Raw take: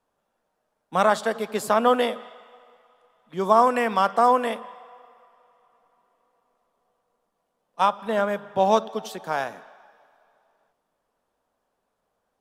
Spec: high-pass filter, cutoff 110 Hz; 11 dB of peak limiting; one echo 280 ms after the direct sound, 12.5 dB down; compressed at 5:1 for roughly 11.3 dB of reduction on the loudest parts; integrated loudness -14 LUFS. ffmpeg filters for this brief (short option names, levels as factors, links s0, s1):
-af "highpass=110,acompressor=threshold=0.0562:ratio=5,alimiter=level_in=1.06:limit=0.0631:level=0:latency=1,volume=0.944,aecho=1:1:280:0.237,volume=12.6"